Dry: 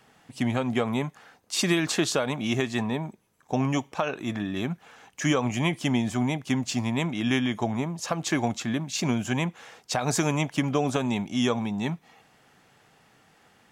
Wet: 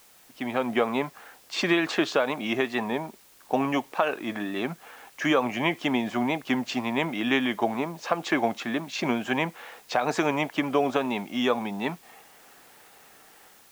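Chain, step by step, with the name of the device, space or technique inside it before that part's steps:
dictaphone (band-pass filter 320–3,000 Hz; automatic gain control gain up to 11 dB; tape wow and flutter; white noise bed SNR 28 dB)
level −5.5 dB

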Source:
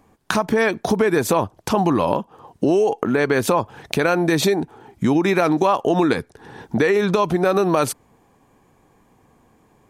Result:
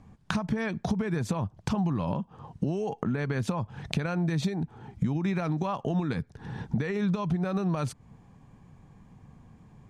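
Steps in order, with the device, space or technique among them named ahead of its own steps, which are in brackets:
jukebox (low-pass filter 7,100 Hz 12 dB per octave; low shelf with overshoot 240 Hz +11 dB, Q 1.5; downward compressor 3 to 1, threshold −25 dBFS, peak gain reduction 14.5 dB)
level −4 dB

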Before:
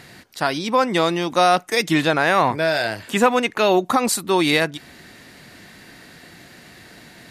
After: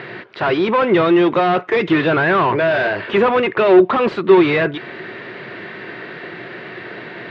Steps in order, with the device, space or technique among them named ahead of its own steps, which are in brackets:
overdrive pedal into a guitar cabinet (mid-hump overdrive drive 27 dB, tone 1,100 Hz, clips at −4.5 dBFS; loudspeaker in its box 81–3,400 Hz, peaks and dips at 82 Hz −7 dB, 120 Hz +7 dB, 260 Hz −6 dB, 380 Hz +9 dB, 790 Hz −6 dB)
level −1 dB

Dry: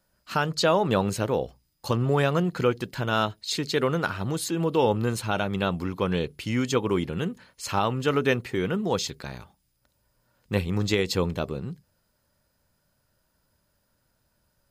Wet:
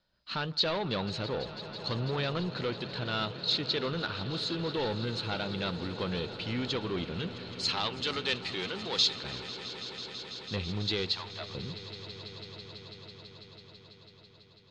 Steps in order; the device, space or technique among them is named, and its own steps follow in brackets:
overdriven synthesiser ladder filter (soft clipping −21.5 dBFS, distortion −11 dB; transistor ladder low-pass 4,400 Hz, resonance 65%)
0:07.27–0:09.18: RIAA equalisation recording
0:11.09–0:11.55: Butterworth high-pass 620 Hz 96 dB per octave
echo that builds up and dies away 165 ms, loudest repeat 5, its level −17 dB
level +5 dB

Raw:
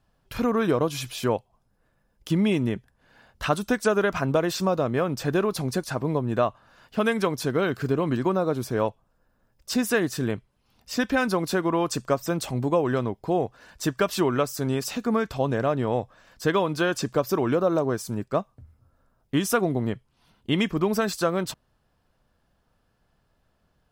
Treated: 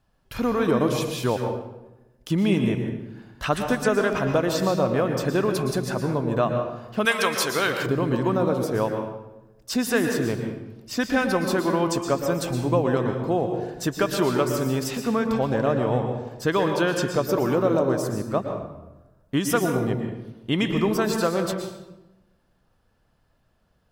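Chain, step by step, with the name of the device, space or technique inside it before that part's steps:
bathroom (convolution reverb RT60 1.0 s, pre-delay 109 ms, DRR 4 dB)
0:07.05–0:07.86: tilt shelving filter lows −9.5 dB, about 670 Hz

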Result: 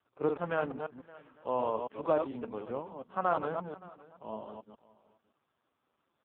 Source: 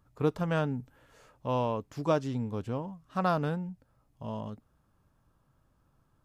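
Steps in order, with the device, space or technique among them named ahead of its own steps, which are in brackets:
delay that plays each chunk backwards 144 ms, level −5 dB
echo ahead of the sound 42 ms −20 dB
satellite phone (band-pass filter 340–3,400 Hz; single-tap delay 567 ms −21 dB; AMR narrowband 5.15 kbit/s 8,000 Hz)

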